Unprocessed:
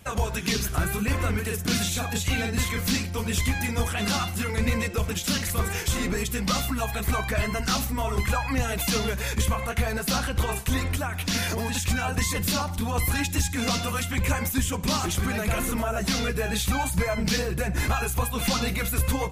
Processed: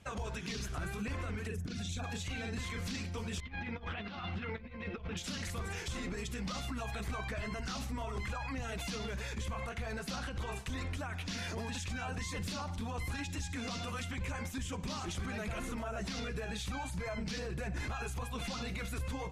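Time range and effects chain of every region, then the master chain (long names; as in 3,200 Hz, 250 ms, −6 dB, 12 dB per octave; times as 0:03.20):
0:01.47–0:02.04: spectral envelope exaggerated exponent 1.5 + compressor whose output falls as the input rises −29 dBFS
0:03.40–0:05.17: low-pass filter 3,600 Hz 24 dB per octave + parametric band 100 Hz −5.5 dB 0.37 octaves + compressor whose output falls as the input rises −31 dBFS, ratio −0.5
whole clip: low-pass filter 6,600 Hz 12 dB per octave; brickwall limiter −22.5 dBFS; level −8 dB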